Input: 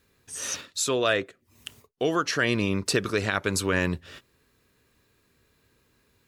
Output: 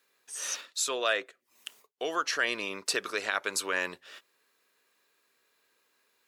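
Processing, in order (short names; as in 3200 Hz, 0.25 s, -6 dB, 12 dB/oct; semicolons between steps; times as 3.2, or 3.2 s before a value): HPF 580 Hz 12 dB/oct; gain -2.5 dB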